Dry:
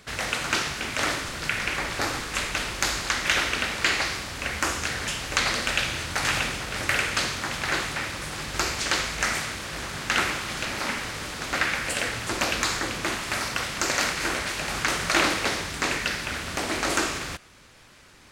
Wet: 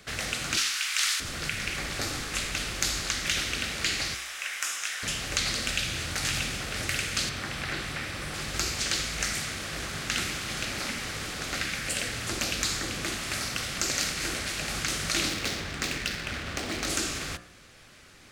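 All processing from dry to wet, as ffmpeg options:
ffmpeg -i in.wav -filter_complex "[0:a]asettb=1/sr,asplit=3[link_01][link_02][link_03];[link_01]atrim=end=0.574[link_04];[link_02]atrim=start=0.57:end=1.2,asetpts=PTS-STARTPTS,afade=type=in:duration=0.004:curve=qsin,afade=type=out:start_time=0.626:duration=0.004:curve=qsin,highpass=frequency=1100:width=0.5412,highpass=frequency=1100:width=1.3066,acontrast=57[link_05];[link_03]atrim=start=1.196[link_06];[link_04][link_05]acrossfade=duration=0.004:curve1=hsin:curve2=qsin[link_07];[link_07][link_06]acrossfade=duration=0.004:curve1=qsin:curve2=hsin,asettb=1/sr,asplit=3[link_08][link_09][link_10];[link_08]atrim=end=4.144[link_11];[link_09]atrim=start=4.14:end=5.03,asetpts=PTS-STARTPTS,afade=type=in:duration=0.004:curve=qsin,afade=type=out:start_time=0.886:duration=0.004:curve=qsin,highpass=1200,equalizer=frequency=4400:width=7.1:gain=-9.5,asplit=2[link_12][link_13];[link_13]adelay=21,volume=-11dB[link_14];[link_12][link_14]amix=inputs=2:normalize=0,atrim=end_sample=39249[link_15];[link_10]atrim=start=5.026[link_16];[link_11][link_15]acrossfade=duration=0.004:curve1=hsin:curve2=qsin[link_17];[link_17][link_16]acrossfade=duration=0.004:curve1=qsin:curve2=hsin,asettb=1/sr,asplit=3[link_18][link_19][link_20];[link_18]atrim=end=7.294[link_21];[link_19]atrim=start=7.29:end=8.34,asetpts=PTS-STARTPTS,afade=type=in:duration=0.004:curve=qsin,afade=type=out:start_time=1.046:duration=0.004:curve=qsin,bandreject=frequency=6700:width=14,acrossover=split=3400[link_22][link_23];[link_23]acompressor=threshold=-40dB:ratio=4:attack=1:release=60[link_24];[link_22][link_24]amix=inputs=2:normalize=0[link_25];[link_20]atrim=start=8.336[link_26];[link_21][link_25]acrossfade=duration=0.004:curve1=hsin:curve2=qsin[link_27];[link_27][link_26]acrossfade=duration=0.004:curve1=qsin:curve2=hsin,asettb=1/sr,asplit=3[link_28][link_29][link_30];[link_28]atrim=end=15.294[link_31];[link_29]atrim=start=15.29:end=16.87,asetpts=PTS-STARTPTS,afade=type=in:duration=0.004:curve=qsin,afade=type=out:start_time=1.576:duration=0.004:curve=qsin,highshelf=frequency=9500:gain=8.5,adynamicsmooth=sensitivity=4:basefreq=2600[link_32];[link_30]atrim=start=16.866[link_33];[link_31][link_32]acrossfade=duration=0.004:curve1=hsin:curve2=qsin[link_34];[link_34][link_33]acrossfade=duration=0.004:curve1=qsin:curve2=hsin,bandreject=frequency=59.51:width_type=h:width=4,bandreject=frequency=119.02:width_type=h:width=4,bandreject=frequency=178.53:width_type=h:width=4,bandreject=frequency=238.04:width_type=h:width=4,bandreject=frequency=297.55:width_type=h:width=4,bandreject=frequency=357.06:width_type=h:width=4,bandreject=frequency=416.57:width_type=h:width=4,bandreject=frequency=476.08:width_type=h:width=4,bandreject=frequency=535.59:width_type=h:width=4,bandreject=frequency=595.1:width_type=h:width=4,bandreject=frequency=654.61:width_type=h:width=4,bandreject=frequency=714.12:width_type=h:width=4,bandreject=frequency=773.63:width_type=h:width=4,bandreject=frequency=833.14:width_type=h:width=4,bandreject=frequency=892.65:width_type=h:width=4,bandreject=frequency=952.16:width_type=h:width=4,bandreject=frequency=1011.67:width_type=h:width=4,bandreject=frequency=1071.18:width_type=h:width=4,bandreject=frequency=1130.69:width_type=h:width=4,bandreject=frequency=1190.2:width_type=h:width=4,bandreject=frequency=1249.71:width_type=h:width=4,bandreject=frequency=1309.22:width_type=h:width=4,bandreject=frequency=1368.73:width_type=h:width=4,bandreject=frequency=1428.24:width_type=h:width=4,bandreject=frequency=1487.75:width_type=h:width=4,bandreject=frequency=1547.26:width_type=h:width=4,bandreject=frequency=1606.77:width_type=h:width=4,bandreject=frequency=1666.28:width_type=h:width=4,bandreject=frequency=1725.79:width_type=h:width=4,bandreject=frequency=1785.3:width_type=h:width=4,acrossover=split=270|3000[link_35][link_36][link_37];[link_36]acompressor=threshold=-34dB:ratio=6[link_38];[link_35][link_38][link_37]amix=inputs=3:normalize=0,equalizer=frequency=950:width=5.8:gain=-7.5" out.wav

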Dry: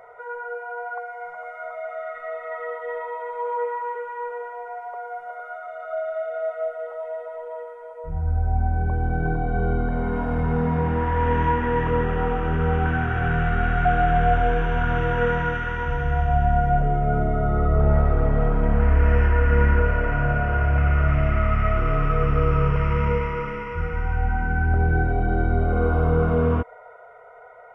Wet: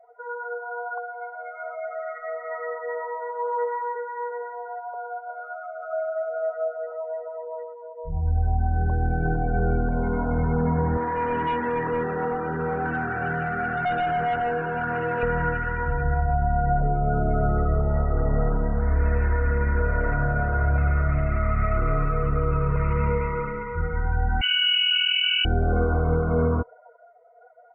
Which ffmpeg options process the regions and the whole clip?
ffmpeg -i in.wav -filter_complex "[0:a]asettb=1/sr,asplit=3[link_01][link_02][link_03];[link_01]atrim=end=10.974[link_04];[link_02]atrim=start=10.97:end=15.23,asetpts=PTS-STARTPTS,afade=type=in:duration=0.004:curve=qsin,afade=type=out:start_time=4.256:duration=0.004:curve=qsin,highpass=190,asoftclip=type=hard:threshold=-21.5dB[link_05];[link_03]atrim=start=15.226[link_06];[link_04][link_05]acrossfade=duration=0.004:curve1=hsin:curve2=qsin[link_07];[link_07][link_06]acrossfade=duration=0.004:curve1=qsin:curve2=hsin,asettb=1/sr,asplit=3[link_08][link_09][link_10];[link_08]atrim=end=24.414[link_11];[link_09]atrim=start=24.41:end=25.45,asetpts=PTS-STARTPTS,afade=type=in:duration=0.004:curve=qsin,afade=type=out:start_time=1.036:duration=0.004:curve=qsin,lowpass=frequency=2600:width_type=q:width=0.5098,lowpass=frequency=2600:width_type=q:width=0.6013,lowpass=frequency=2600:width_type=q:width=0.9,lowpass=frequency=2600:width_type=q:width=2.563,afreqshift=-3000,asplit=2[link_12][link_13];[link_13]adelay=38,volume=-14dB[link_14];[link_12][link_14]amix=inputs=2:normalize=0,atrim=end_sample=45864[link_15];[link_10]atrim=start=25.446[link_16];[link_11][link_15]acrossfade=duration=0.004:curve1=hsin:curve2=qsin[link_17];[link_17][link_16]acrossfade=duration=0.004:curve1=qsin:curve2=hsin,afftdn=noise_reduction=25:noise_floor=-34,alimiter=limit=-13.5dB:level=0:latency=1:release=128" out.wav

